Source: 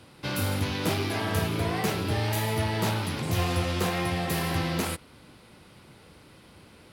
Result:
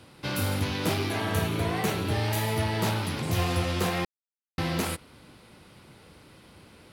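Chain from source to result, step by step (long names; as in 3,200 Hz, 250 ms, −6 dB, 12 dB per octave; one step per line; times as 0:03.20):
0:01.09–0:02.14: notch filter 5,000 Hz, Q 9.1
0:04.05–0:04.58: silence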